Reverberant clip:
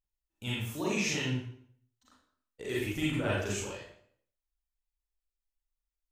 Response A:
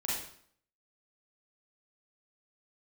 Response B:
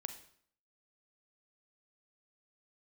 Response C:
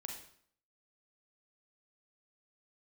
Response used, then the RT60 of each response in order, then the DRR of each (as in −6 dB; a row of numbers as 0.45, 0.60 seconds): A; 0.60, 0.60, 0.60 seconds; −7.0, 8.0, 1.0 decibels